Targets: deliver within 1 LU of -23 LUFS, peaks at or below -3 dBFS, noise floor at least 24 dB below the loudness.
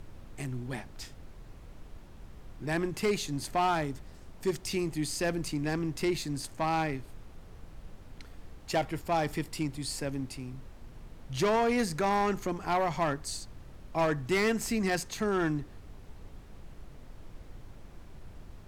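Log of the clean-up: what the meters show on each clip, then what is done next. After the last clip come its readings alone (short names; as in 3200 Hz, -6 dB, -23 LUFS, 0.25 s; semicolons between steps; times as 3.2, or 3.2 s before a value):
clipped 1.0%; flat tops at -22.0 dBFS; noise floor -50 dBFS; noise floor target -56 dBFS; loudness -31.5 LUFS; peak -22.0 dBFS; loudness target -23.0 LUFS
-> clip repair -22 dBFS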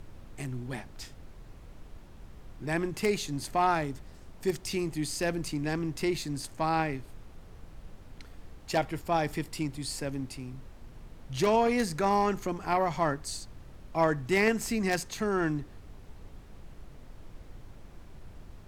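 clipped 0.0%; noise floor -50 dBFS; noise floor target -55 dBFS
-> noise print and reduce 6 dB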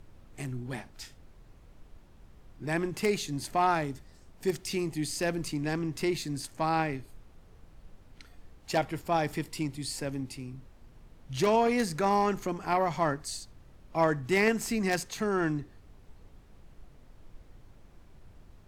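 noise floor -56 dBFS; loudness -30.5 LUFS; peak -13.0 dBFS; loudness target -23.0 LUFS
-> gain +7.5 dB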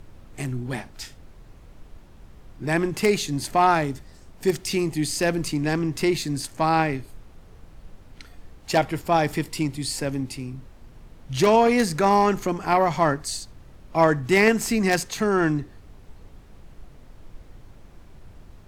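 loudness -23.0 LUFS; peak -5.5 dBFS; noise floor -48 dBFS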